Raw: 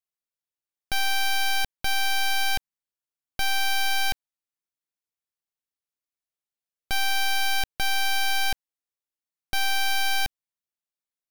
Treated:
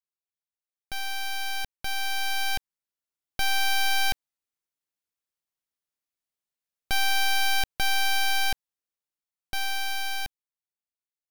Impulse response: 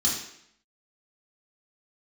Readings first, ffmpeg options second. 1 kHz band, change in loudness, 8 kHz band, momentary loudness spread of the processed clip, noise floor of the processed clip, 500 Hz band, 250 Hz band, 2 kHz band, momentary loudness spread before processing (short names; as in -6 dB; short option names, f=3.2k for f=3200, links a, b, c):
-2.0 dB, -1.5 dB, -2.0 dB, 11 LU, under -85 dBFS, -1.5 dB, -1.5 dB, -2.0 dB, 7 LU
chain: -af "dynaudnorm=f=240:g=21:m=8.5dB,volume=-8dB"